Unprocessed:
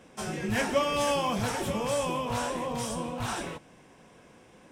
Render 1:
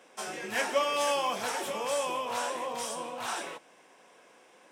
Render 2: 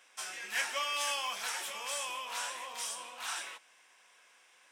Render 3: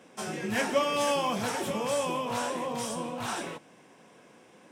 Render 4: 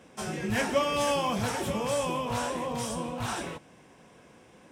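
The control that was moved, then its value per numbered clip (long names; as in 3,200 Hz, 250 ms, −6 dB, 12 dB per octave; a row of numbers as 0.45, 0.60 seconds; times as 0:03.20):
high-pass filter, corner frequency: 470, 1,500, 180, 45 Hertz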